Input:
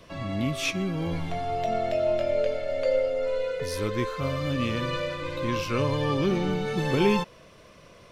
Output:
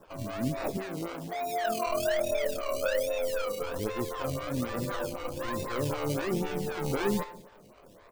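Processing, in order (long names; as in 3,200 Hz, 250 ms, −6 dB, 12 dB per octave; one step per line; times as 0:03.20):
0:00.77–0:01.87: high-pass filter 190 Hz 24 dB per octave
in parallel at +0.5 dB: brickwall limiter −19 dBFS, peak gain reduction 8 dB
on the sum: sample-and-hold swept by an LFO 20×, swing 60% 1.2 Hz
on a send: single-tap delay 181 ms −20.5 dB
on the sum: coupled-rooms reverb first 0.6 s, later 3.2 s, from −19 dB, DRR 11.5 dB
phaser with staggered stages 3.9 Hz
level −8 dB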